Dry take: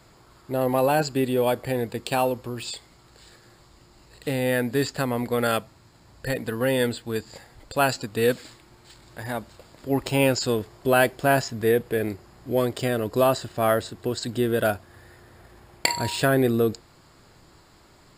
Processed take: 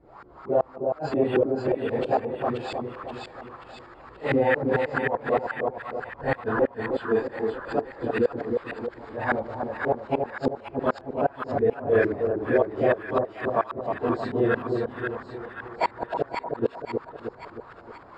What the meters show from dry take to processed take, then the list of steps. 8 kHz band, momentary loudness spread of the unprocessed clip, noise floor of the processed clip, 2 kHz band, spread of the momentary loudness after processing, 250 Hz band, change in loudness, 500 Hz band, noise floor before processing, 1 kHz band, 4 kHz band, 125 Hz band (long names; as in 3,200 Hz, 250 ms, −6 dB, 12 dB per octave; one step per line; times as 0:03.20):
below −25 dB, 12 LU, −48 dBFS, −2.0 dB, 15 LU, −2.5 dB, −2.0 dB, 0.0 dB, −55 dBFS, −0.5 dB, −13.5 dB, −6.0 dB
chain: random phases in long frames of 100 ms
tilt shelving filter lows −9.5 dB, about 790 Hz
auto-filter low-pass saw up 4.4 Hz 290–1,500 Hz
in parallel at −2.5 dB: compressor whose output falls as the input rises −26 dBFS, ratio −1
on the sum: gate with flip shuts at −11 dBFS, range −34 dB
on a send: echo with a time of its own for lows and highs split 980 Hz, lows 313 ms, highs 530 ms, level −4 dB